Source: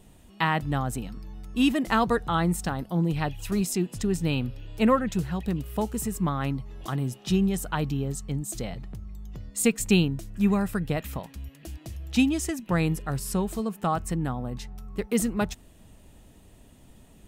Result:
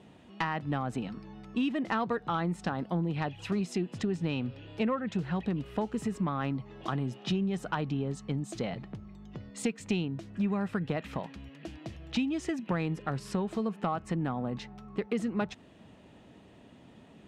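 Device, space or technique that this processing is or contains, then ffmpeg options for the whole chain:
AM radio: -af "highpass=150,lowpass=3.4k,acompressor=threshold=-30dB:ratio=5,asoftclip=type=tanh:threshold=-20.5dB,volume=3dB"

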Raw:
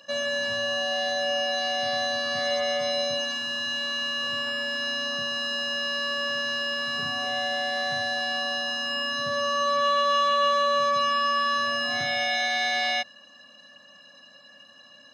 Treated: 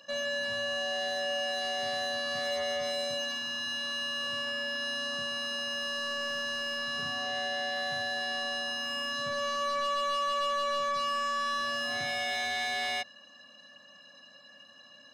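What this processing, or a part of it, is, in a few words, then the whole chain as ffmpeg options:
saturation between pre-emphasis and de-emphasis: -af "highshelf=f=4.1k:g=6.5,asoftclip=type=tanh:threshold=-23.5dB,highshelf=f=4.1k:g=-6.5,volume=-3dB"

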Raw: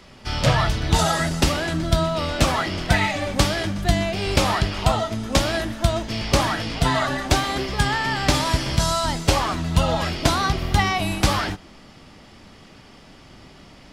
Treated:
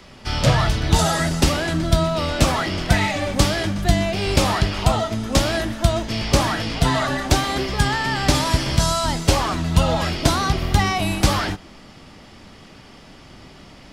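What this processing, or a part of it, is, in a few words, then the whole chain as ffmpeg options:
one-band saturation: -filter_complex "[0:a]acrossover=split=560|4500[a][b][c];[b]asoftclip=type=tanh:threshold=-21dB[d];[a][d][c]amix=inputs=3:normalize=0,volume=2.5dB"

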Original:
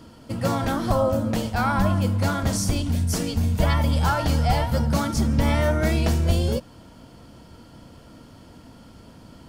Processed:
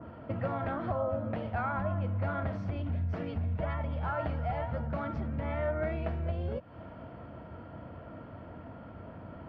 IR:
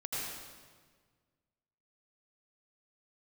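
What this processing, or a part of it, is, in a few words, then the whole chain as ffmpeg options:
bass amplifier: -af "acompressor=threshold=-33dB:ratio=5,highpass=62,equalizer=f=91:t=q:w=4:g=5,equalizer=f=240:t=q:w=4:g=-3,equalizer=f=640:t=q:w=4:g=8,equalizer=f=1.3k:t=q:w=4:g=3,lowpass=f=2.2k:w=0.5412,lowpass=f=2.2k:w=1.3066,adynamicequalizer=threshold=0.00251:dfrequency=2000:dqfactor=0.7:tfrequency=2000:tqfactor=0.7:attack=5:release=100:ratio=0.375:range=2.5:mode=boostabove:tftype=highshelf"

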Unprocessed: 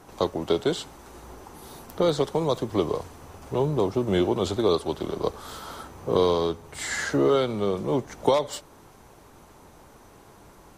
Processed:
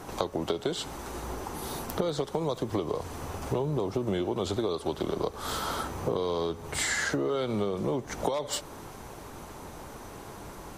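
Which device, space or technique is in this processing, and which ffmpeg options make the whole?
serial compression, leveller first: -af "acompressor=threshold=-24dB:ratio=2.5,acompressor=threshold=-34dB:ratio=6,volume=7.5dB"

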